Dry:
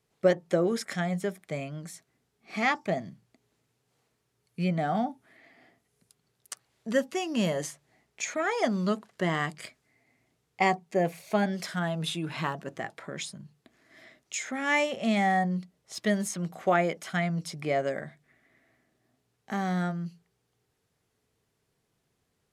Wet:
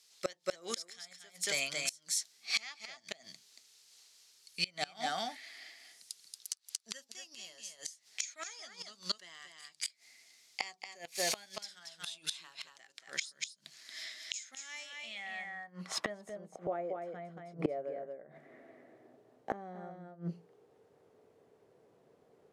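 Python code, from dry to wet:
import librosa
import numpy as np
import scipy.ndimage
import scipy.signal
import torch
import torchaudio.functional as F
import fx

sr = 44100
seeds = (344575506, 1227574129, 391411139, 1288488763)

y = fx.high_shelf(x, sr, hz=6300.0, db=11.5)
y = y + 10.0 ** (-4.0 / 20.0) * np.pad(y, (int(230 * sr / 1000.0), 0))[:len(y)]
y = fx.filter_sweep_bandpass(y, sr, from_hz=4800.0, to_hz=500.0, start_s=14.79, end_s=16.56, q=1.8)
y = fx.gate_flip(y, sr, shuts_db=-35.0, range_db=-26)
y = y * librosa.db_to_amplitude(16.5)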